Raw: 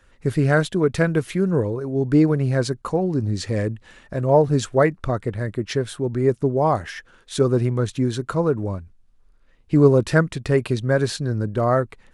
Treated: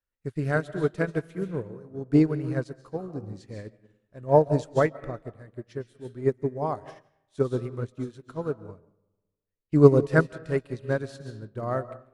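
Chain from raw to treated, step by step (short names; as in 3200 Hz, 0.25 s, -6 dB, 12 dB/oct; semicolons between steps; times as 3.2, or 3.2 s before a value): digital reverb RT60 1.3 s, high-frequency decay 0.5×, pre-delay 0.1 s, DRR 7 dB; upward expander 2.5:1, over -34 dBFS; gain +1.5 dB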